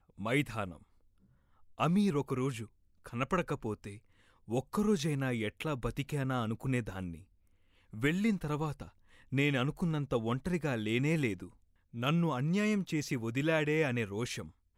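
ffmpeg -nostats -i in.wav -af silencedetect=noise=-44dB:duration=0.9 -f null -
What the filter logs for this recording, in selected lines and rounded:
silence_start: 0.77
silence_end: 1.79 | silence_duration: 1.03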